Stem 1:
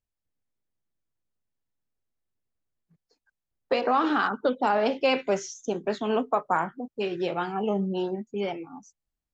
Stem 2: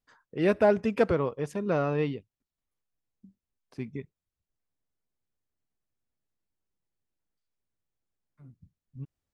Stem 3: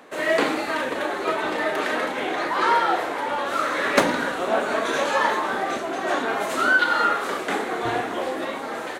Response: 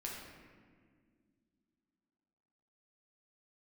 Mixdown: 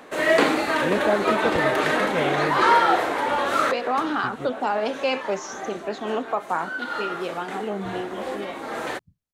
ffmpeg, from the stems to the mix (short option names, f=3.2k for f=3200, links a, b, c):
-filter_complex "[0:a]dynaudnorm=f=870:g=5:m=7.5dB,lowshelf=f=210:g=-6,volume=-7dB,asplit=2[a][b];[1:a]adelay=450,volume=-1dB[c];[2:a]lowshelf=f=98:g=7.5,volume=2.5dB[d];[b]apad=whole_len=396546[e];[d][e]sidechaincompress=threshold=-38dB:ratio=8:attack=8.7:release=547[f];[a][c][f]amix=inputs=3:normalize=0"